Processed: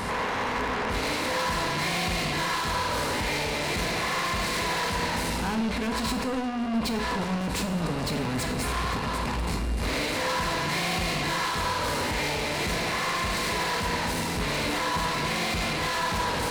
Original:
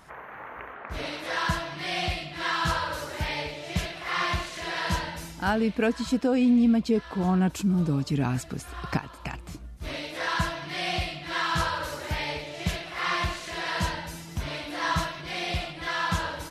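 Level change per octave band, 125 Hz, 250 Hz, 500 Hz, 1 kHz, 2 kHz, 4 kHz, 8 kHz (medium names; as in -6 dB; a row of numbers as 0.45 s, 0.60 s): -1.0 dB, -3.0 dB, +2.0 dB, +3.0 dB, +2.5 dB, +3.5 dB, +7.5 dB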